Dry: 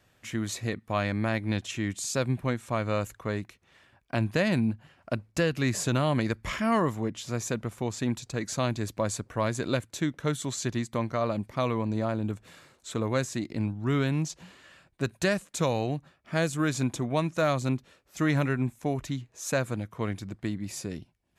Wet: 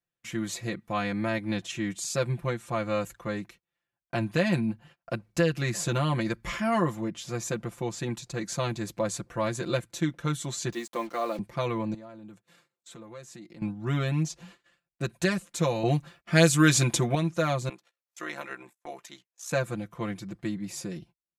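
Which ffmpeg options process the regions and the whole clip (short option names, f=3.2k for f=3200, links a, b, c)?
-filter_complex "[0:a]asettb=1/sr,asplit=3[a][b][c];[a]atrim=end=10.724[d];[b]atrim=start=10.72:end=11.39,asetpts=PTS-STARTPTS,afade=t=in:d=0.004:c=qsin,afade=t=out:st=0.666:d=0.004:c=qsin,highpass=f=260:w=0.5412,highpass=f=260:w=1.3066,acrusher=bits=7:mix=0:aa=0.5,bandreject=f=1.5k:w=18[e];[c]atrim=start=11.386[f];[d][e]acrossfade=d=0.004:c1=hsin:c2=qsin[g];[g][f]acrossfade=d=0.004:c1=qsin:c2=hsin,asettb=1/sr,asplit=3[h][i][j];[h]atrim=end=11.944[k];[i]atrim=start=11.94:end=13.62,asetpts=PTS-STARTPTS,afade=t=in:d=0.004:c=qsin,afade=t=out:st=1.676:d=0.004:c=qsin,highpass=120,acompressor=threshold=-48dB:ratio=2.5:attack=3.2:release=140:knee=1:detection=peak[l];[j]atrim=start=13.616[m];[k][l]acrossfade=d=0.004:c1=hsin:c2=qsin[n];[n][m]acrossfade=d=0.004:c1=qsin:c2=hsin,asettb=1/sr,asplit=3[o][p][q];[o]atrim=end=15.834[r];[p]atrim=start=15.83:end=17.15,asetpts=PTS-STARTPTS,afade=t=in:d=0.004:c=qsin,afade=t=out:st=1.316:d=0.004:c=qsin,acontrast=59,adynamicequalizer=threshold=0.0141:dfrequency=1800:dqfactor=0.7:tfrequency=1800:tqfactor=0.7:attack=5:release=100:ratio=0.375:range=3:mode=boostabove:tftype=highshelf[s];[q]atrim=start=17.146[t];[r][s]acrossfade=d=0.004:c1=hsin:c2=qsin[u];[u][t]acrossfade=d=0.004:c1=qsin:c2=hsin,asettb=1/sr,asplit=3[v][w][x];[v]atrim=end=17.694[y];[w]atrim=start=17.69:end=19.51,asetpts=PTS-STARTPTS,afade=t=in:d=0.004:c=qsin,afade=t=out:st=1.816:d=0.004:c=qsin,tremolo=f=61:d=0.947,highpass=600[z];[x]atrim=start=19.506[aa];[y][z]acrossfade=d=0.004:c1=hsin:c2=qsin[ab];[ab][aa]acrossfade=d=0.004:c1=qsin:c2=hsin,agate=range=-27dB:threshold=-51dB:ratio=16:detection=peak,aecho=1:1:5.8:0.9,volume=-3dB"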